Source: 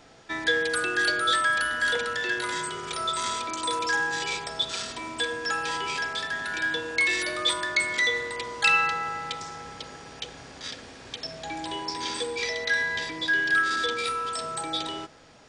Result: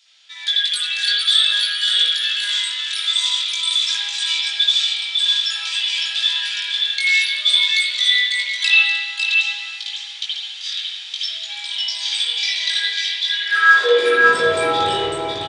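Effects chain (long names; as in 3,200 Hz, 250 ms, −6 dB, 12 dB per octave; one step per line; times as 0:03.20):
high-pass filter sweep 3,500 Hz → 93 Hz, 0:13.25–0:14.46
on a send: single-tap delay 552 ms −5 dB
on the sum: spring reverb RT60 1.3 s, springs 52 ms, chirp 45 ms, DRR −7 dB
automatic gain control gain up to 5 dB
chorus effect 0.5 Hz, delay 18.5 ms, depth 2.2 ms
dynamic equaliser 410 Hz, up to +7 dB, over −39 dBFS, Q 1.3
level +2 dB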